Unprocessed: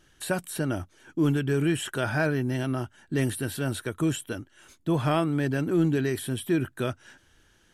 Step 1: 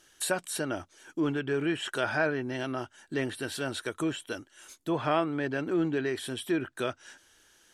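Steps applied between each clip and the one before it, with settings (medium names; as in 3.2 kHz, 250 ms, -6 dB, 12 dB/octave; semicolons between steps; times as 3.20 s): low-pass that closes with the level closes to 2.7 kHz, closed at -22 dBFS; tone controls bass -13 dB, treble +7 dB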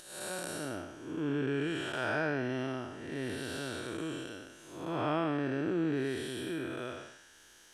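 spectral blur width 286 ms; upward compressor, threshold -51 dBFS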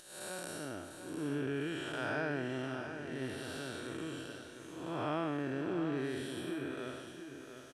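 feedback delay 700 ms, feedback 35%, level -9 dB; trim -4 dB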